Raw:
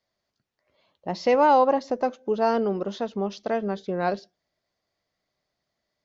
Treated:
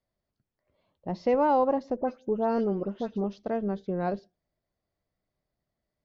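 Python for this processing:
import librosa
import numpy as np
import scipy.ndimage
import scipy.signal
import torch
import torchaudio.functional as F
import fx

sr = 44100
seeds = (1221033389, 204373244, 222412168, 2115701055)

y = fx.tilt_eq(x, sr, slope=-3.0)
y = fx.dispersion(y, sr, late='highs', ms=96.0, hz=2700.0, at=(1.96, 3.24))
y = y * 10.0 ** (-7.0 / 20.0)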